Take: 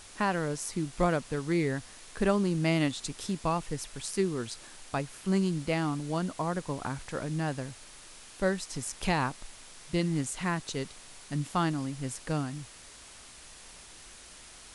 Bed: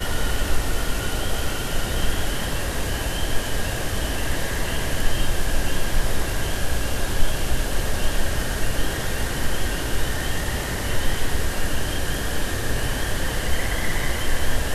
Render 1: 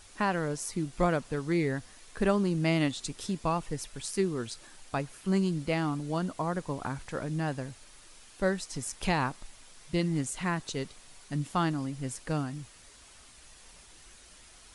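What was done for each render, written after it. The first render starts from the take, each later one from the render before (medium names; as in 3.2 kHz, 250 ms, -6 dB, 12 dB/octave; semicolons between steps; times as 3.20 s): noise reduction 6 dB, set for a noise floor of -51 dBFS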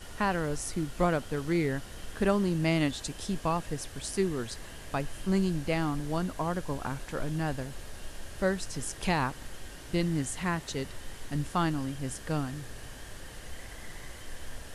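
add bed -20.5 dB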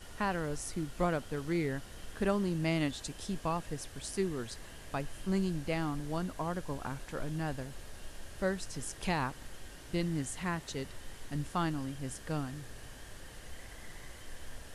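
trim -4.5 dB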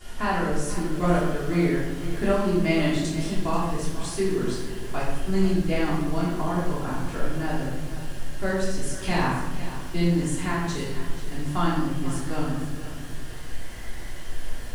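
simulated room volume 400 m³, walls mixed, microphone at 3.2 m; bit-crushed delay 486 ms, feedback 35%, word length 7-bit, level -13 dB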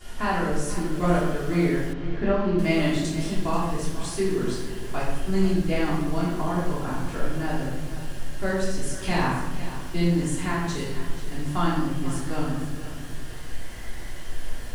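1.93–2.59 s: distance through air 220 m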